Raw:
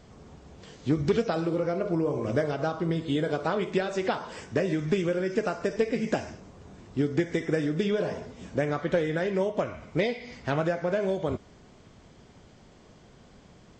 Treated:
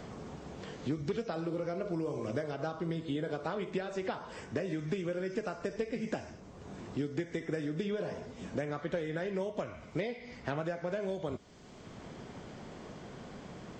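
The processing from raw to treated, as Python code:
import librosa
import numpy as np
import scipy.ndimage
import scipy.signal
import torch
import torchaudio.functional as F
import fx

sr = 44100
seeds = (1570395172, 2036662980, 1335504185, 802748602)

y = fx.band_squash(x, sr, depth_pct=70)
y = y * 10.0 ** (-8.5 / 20.0)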